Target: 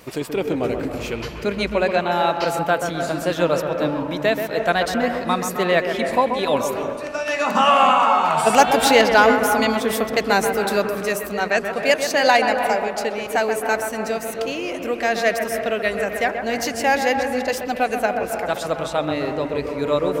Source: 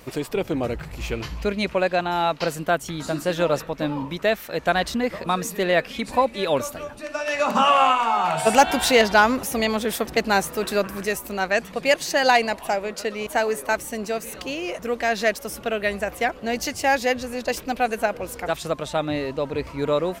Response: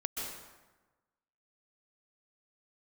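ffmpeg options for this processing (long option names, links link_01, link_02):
-filter_complex "[0:a]lowshelf=frequency=65:gain=-11,asplit=2[link_01][link_02];[1:a]atrim=start_sample=2205,lowpass=2200,adelay=131[link_03];[link_02][link_03]afir=irnorm=-1:irlink=0,volume=-6dB[link_04];[link_01][link_04]amix=inputs=2:normalize=0,volume=1.5dB"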